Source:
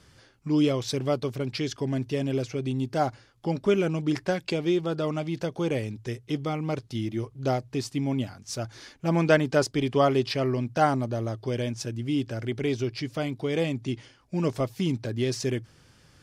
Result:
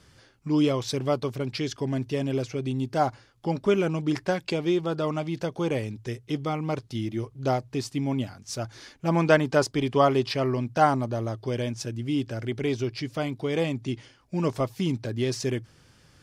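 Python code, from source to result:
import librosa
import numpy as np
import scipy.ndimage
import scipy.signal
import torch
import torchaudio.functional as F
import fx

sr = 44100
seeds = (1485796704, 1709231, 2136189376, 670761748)

y = fx.dynamic_eq(x, sr, hz=990.0, q=2.0, threshold_db=-41.0, ratio=4.0, max_db=5)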